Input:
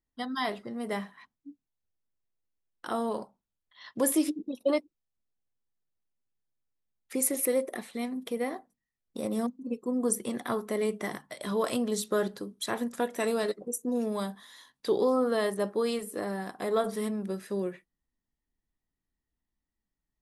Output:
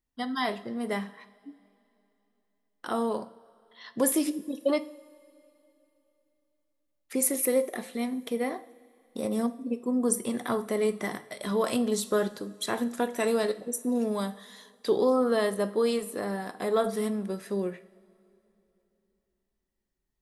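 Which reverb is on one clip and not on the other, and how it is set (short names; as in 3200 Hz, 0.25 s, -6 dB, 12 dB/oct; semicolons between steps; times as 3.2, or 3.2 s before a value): two-slope reverb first 0.55 s, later 3.2 s, from -18 dB, DRR 11.5 dB; gain +1.5 dB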